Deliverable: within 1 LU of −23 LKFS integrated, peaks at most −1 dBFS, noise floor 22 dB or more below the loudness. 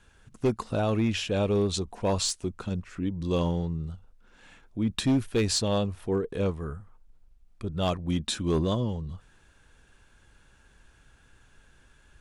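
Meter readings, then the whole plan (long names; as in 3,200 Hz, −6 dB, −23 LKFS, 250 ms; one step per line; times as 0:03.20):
share of clipped samples 0.7%; peaks flattened at −18.5 dBFS; integrated loudness −28.5 LKFS; sample peak −18.5 dBFS; target loudness −23.0 LKFS
→ clipped peaks rebuilt −18.5 dBFS
level +5.5 dB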